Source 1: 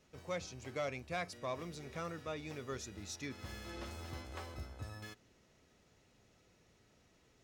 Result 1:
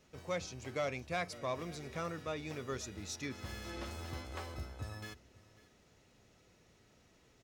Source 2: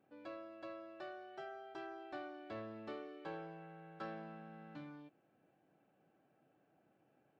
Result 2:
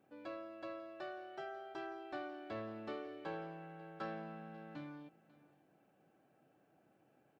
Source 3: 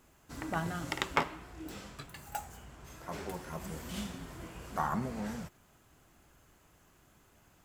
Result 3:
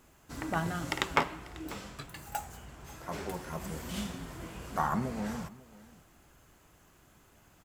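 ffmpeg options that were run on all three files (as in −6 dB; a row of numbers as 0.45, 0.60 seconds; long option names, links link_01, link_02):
-af "aecho=1:1:543:0.1,volume=2.5dB"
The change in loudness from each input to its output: +2.5, +2.5, +2.5 LU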